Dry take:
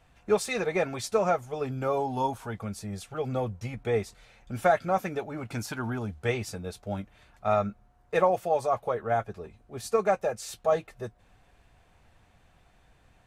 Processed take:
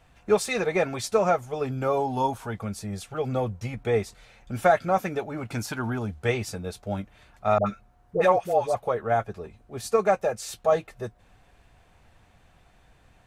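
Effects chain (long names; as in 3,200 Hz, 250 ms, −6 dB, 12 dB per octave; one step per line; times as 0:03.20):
0:07.58–0:08.75: all-pass dispersion highs, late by 85 ms, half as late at 780 Hz
level +3 dB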